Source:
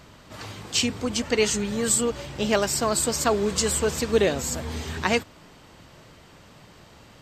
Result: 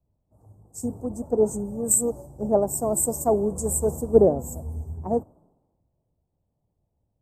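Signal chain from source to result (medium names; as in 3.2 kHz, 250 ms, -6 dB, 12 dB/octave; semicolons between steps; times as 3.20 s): Chebyshev band-stop 780–9000 Hz, order 3; three bands expanded up and down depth 100%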